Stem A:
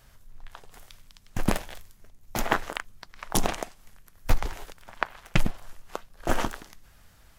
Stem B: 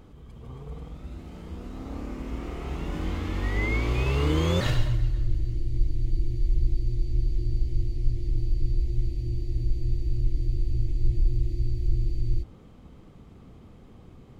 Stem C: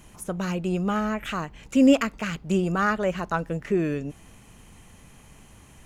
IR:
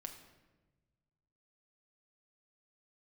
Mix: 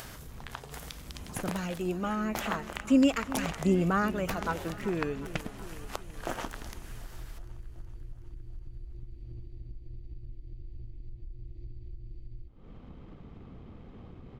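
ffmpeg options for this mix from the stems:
-filter_complex "[0:a]highpass=f=170:p=1,acompressor=threshold=-38dB:ratio=3,volume=2.5dB,asplit=2[a][b];[b]volume=-22dB[c];[1:a]aeval=exprs='if(lt(val(0),0),0.708*val(0),val(0))':c=same,lowpass=3.5k,acompressor=threshold=-37dB:ratio=2.5,adelay=50,volume=-10.5dB,asplit=2[d][e];[e]volume=-22dB[f];[2:a]aphaser=in_gain=1:out_gain=1:delay=4.5:decay=0.44:speed=0.37:type=sinusoidal,adelay=1150,volume=-6.5dB,asplit=2[g][h];[h]volume=-16dB[i];[c][f][i]amix=inputs=3:normalize=0,aecho=0:1:372|744|1116|1488|1860|2232|2604|2976|3348|3720:1|0.6|0.36|0.216|0.13|0.0778|0.0467|0.028|0.0168|0.0101[j];[a][d][g][j]amix=inputs=4:normalize=0,acompressor=mode=upward:threshold=-34dB:ratio=2.5"

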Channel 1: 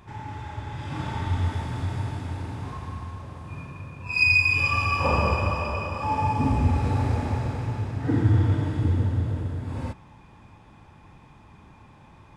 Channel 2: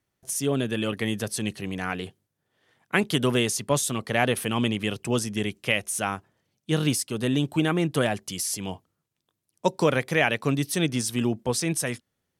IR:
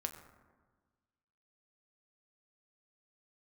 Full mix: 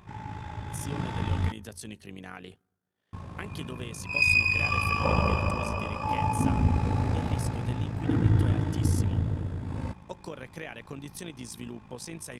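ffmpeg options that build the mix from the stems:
-filter_complex "[0:a]equalizer=f=180:t=o:w=0.3:g=8,volume=-1.5dB,asplit=3[a][b][c];[a]atrim=end=1.52,asetpts=PTS-STARTPTS,afade=t=out:st=1.516:d=0.004:c=hsin[d];[b]atrim=start=1.52:end=3.13,asetpts=PTS-STARTPTS,volume=0[e];[c]atrim=start=3.13,asetpts=PTS-STARTPTS,afade=t=in:d=0.004:c=hsin[f];[d][e][f]concat=n=3:v=0:a=1,asplit=2[g][h];[h]volume=-15.5dB[i];[1:a]acompressor=threshold=-25dB:ratio=6,adelay=450,volume=-8.5dB,asplit=2[j][k];[k]volume=-23.5dB[l];[2:a]atrim=start_sample=2205[m];[i][l]amix=inputs=2:normalize=0[n];[n][m]afir=irnorm=-1:irlink=0[o];[g][j][o]amix=inputs=3:normalize=0,tremolo=f=54:d=0.621"

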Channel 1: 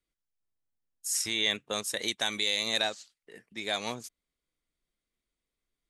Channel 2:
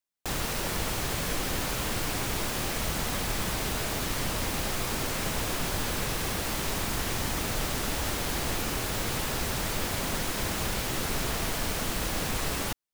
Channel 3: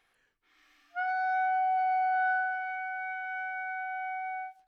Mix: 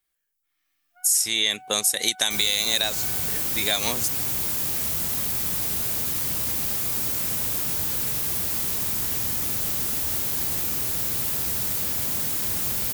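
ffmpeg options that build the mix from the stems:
-filter_complex "[0:a]dynaudnorm=f=610:g=3:m=11.5dB,volume=-2.5dB[a];[1:a]highpass=77,lowshelf=f=230:g=8,adelay=2050,volume=-6.5dB[b];[2:a]alimiter=level_in=6.5dB:limit=-24dB:level=0:latency=1,volume=-6.5dB,volume=-7.5dB,afade=t=in:st=1.39:d=0.36:silence=0.316228,afade=t=out:st=3.07:d=0.41:silence=0.266073[c];[a][b][c]amix=inputs=3:normalize=0,aemphasis=mode=production:type=75fm,acompressor=threshold=-19dB:ratio=4"

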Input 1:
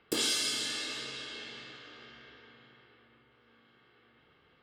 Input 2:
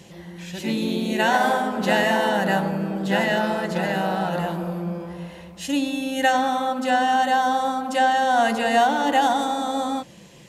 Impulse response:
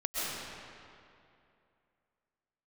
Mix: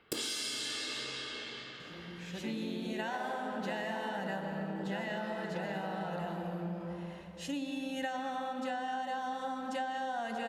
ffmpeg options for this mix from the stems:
-filter_complex "[0:a]volume=0dB,asplit=2[a][b];[b]volume=-17.5dB[c];[1:a]highshelf=f=8.6k:g=-9.5,adelay=1800,volume=-10.5dB,asplit=2[d][e];[e]volume=-13dB[f];[2:a]atrim=start_sample=2205[g];[c][f]amix=inputs=2:normalize=0[h];[h][g]afir=irnorm=-1:irlink=0[i];[a][d][i]amix=inputs=3:normalize=0,acompressor=threshold=-34dB:ratio=6"

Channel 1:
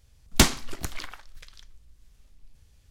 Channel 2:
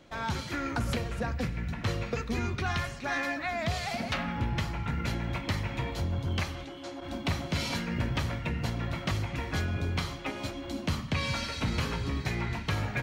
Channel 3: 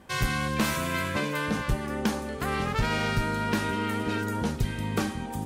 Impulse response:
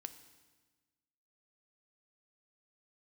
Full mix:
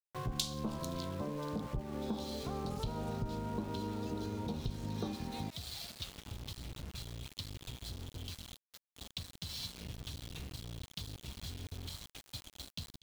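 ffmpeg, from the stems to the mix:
-filter_complex "[0:a]volume=-18.5dB[a];[1:a]asubboost=boost=7.5:cutoff=120,acompressor=threshold=-22dB:ratio=6,adelay=1900,volume=-19dB,asplit=2[b][c];[c]volume=-23dB[d];[2:a]lowpass=f=1.1k:w=0.5412,lowpass=f=1.1k:w=1.3066,adelay=50,volume=-2.5dB[e];[3:a]atrim=start_sample=2205[f];[d][f]afir=irnorm=-1:irlink=0[g];[a][b][e][g]amix=inputs=4:normalize=0,highshelf=f=2.6k:t=q:w=3:g=12.5,aeval=exprs='val(0)*gte(abs(val(0)),0.0075)':c=same,acompressor=threshold=-38dB:ratio=2.5"

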